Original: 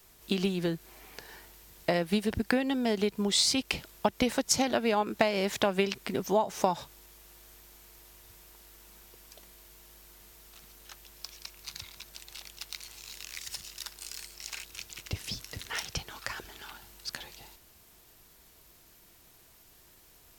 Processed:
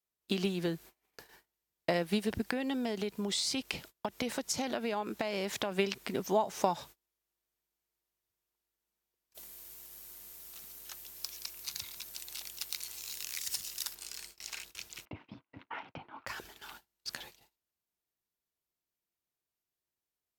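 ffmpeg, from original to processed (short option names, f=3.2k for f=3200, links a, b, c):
-filter_complex "[0:a]asettb=1/sr,asplit=3[a][b][c];[a]atrim=end=2.424[d];[b]atrim=start=2.42:end=5.72,asetpts=PTS-STARTPTS,afade=t=in:d=0.004:c=qsin,afade=t=out:st=3.296:d=0.004:c=qsin,acompressor=threshold=-27dB:ratio=4:attack=3.2:release=140:knee=1:detection=peak[e];[c]atrim=start=5.716[f];[d][e]acrossfade=d=0.004:c1=hsin:c2=qsin[g];[g][f]acrossfade=d=0.004:c1=qsin:c2=hsin,asettb=1/sr,asplit=3[h][i][j];[h]atrim=end=9.344[k];[i]atrim=start=9.34:end=13.95,asetpts=PTS-STARTPTS,afade=t=in:d=0.004:c=qsin,afade=t=out:st=4.606:d=0.004:c=qsin,highshelf=f=6.3k:g=11.5[l];[j]atrim=start=13.946[m];[k][l]acrossfade=d=0.004:c1=hsin:c2=qsin[n];[n][m]acrossfade=d=0.004:c1=qsin:c2=hsin,asettb=1/sr,asplit=3[o][p][q];[o]atrim=end=15.054[r];[p]atrim=start=15.05:end=16.27,asetpts=PTS-STARTPTS,afade=t=in:d=0.004:c=qsin,afade=t=out:st=1.216:d=0.004:c=qsin,highpass=140,equalizer=f=170:t=q:w=4:g=-4,equalizer=f=280:t=q:w=4:g=8,equalizer=f=430:t=q:w=4:g=-6,equalizer=f=920:t=q:w=4:g=6,equalizer=f=1.8k:t=q:w=4:g=-8,lowpass=f=2.2k:w=0.5412,lowpass=f=2.2k:w=1.3066[s];[q]atrim=start=16.266[t];[r][s]acrossfade=d=0.004:c1=hsin:c2=qsin[u];[u][t]acrossfade=d=0.004:c1=qsin:c2=hsin,agate=range=-31dB:threshold=-47dB:ratio=16:detection=peak,lowshelf=f=64:g=-11.5,volume=-2.5dB"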